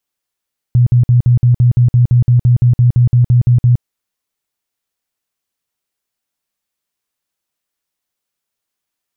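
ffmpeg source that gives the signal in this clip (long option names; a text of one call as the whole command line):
ffmpeg -f lavfi -i "aevalsrc='0.531*sin(2*PI*122*mod(t,0.17))*lt(mod(t,0.17),14/122)':duration=3.06:sample_rate=44100" out.wav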